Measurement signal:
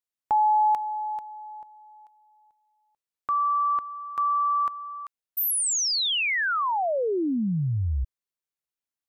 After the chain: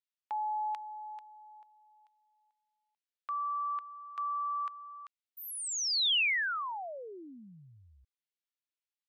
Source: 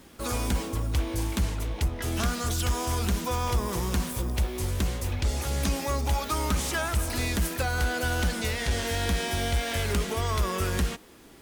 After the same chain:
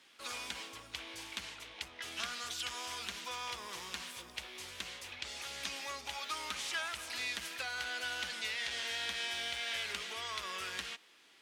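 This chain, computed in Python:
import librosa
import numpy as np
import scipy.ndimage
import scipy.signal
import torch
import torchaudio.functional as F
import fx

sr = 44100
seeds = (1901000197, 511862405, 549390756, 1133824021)

y = fx.bandpass_q(x, sr, hz=3000.0, q=1.1)
y = y * librosa.db_to_amplitude(-2.0)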